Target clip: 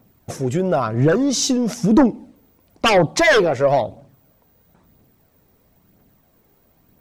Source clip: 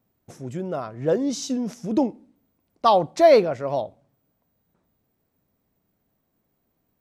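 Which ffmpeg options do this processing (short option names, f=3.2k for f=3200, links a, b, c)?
-af "aeval=exprs='0.562*sin(PI/2*3.16*val(0)/0.562)':c=same,acompressor=threshold=-16dB:ratio=2.5,aphaser=in_gain=1:out_gain=1:delay=2.6:decay=0.36:speed=1:type=triangular"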